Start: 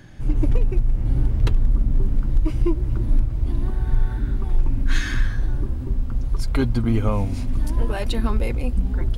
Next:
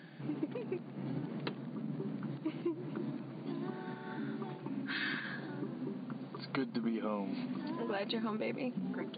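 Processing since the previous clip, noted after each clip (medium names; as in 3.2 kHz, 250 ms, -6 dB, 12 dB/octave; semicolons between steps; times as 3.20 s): peak limiter -12.5 dBFS, peak gain reduction 4.5 dB; FFT band-pass 130–4700 Hz; compression 4:1, threshold -29 dBFS, peak gain reduction 8.5 dB; trim -4 dB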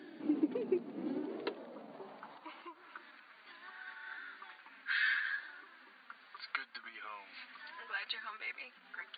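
flange 0.71 Hz, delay 2.7 ms, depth 2.3 ms, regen -36%; high-pass sweep 320 Hz -> 1.6 kHz, 1.04–3.09 s; trim +2.5 dB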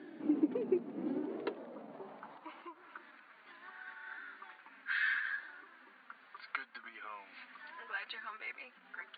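distance through air 330 m; trim +2 dB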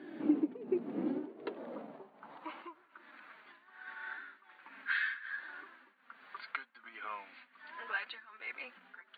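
tremolo triangle 1.3 Hz, depth 90%; trim +5.5 dB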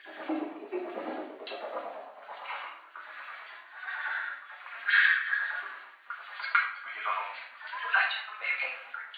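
LFO high-pass sine 9 Hz 620–3500 Hz; simulated room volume 130 m³, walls mixed, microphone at 1.3 m; trim +5 dB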